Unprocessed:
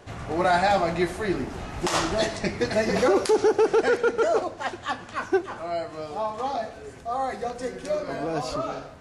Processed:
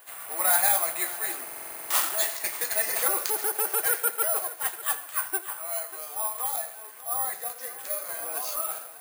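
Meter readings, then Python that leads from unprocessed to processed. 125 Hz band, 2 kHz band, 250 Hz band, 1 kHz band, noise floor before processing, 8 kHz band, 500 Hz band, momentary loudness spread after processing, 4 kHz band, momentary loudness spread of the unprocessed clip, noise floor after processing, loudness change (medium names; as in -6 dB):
under -30 dB, -2.5 dB, -21.5 dB, -6.5 dB, -43 dBFS, +12.0 dB, -13.5 dB, 11 LU, -2.5 dB, 11 LU, -44 dBFS, -0.5 dB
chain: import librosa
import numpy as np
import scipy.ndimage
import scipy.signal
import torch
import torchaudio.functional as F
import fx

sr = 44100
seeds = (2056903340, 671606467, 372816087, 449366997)

y = scipy.signal.sosfilt(scipy.signal.butter(2, 1000.0, 'highpass', fs=sr, output='sos'), x)
y = fx.echo_multitap(y, sr, ms=(82, 590), db=(-19.0, -16.0))
y = (np.kron(scipy.signal.resample_poly(y, 1, 4), np.eye(4)[0]) * 4)[:len(y)]
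y = fx.buffer_glitch(y, sr, at_s=(1.44,), block=2048, repeats=9)
y = y * 10.0 ** (-2.0 / 20.0)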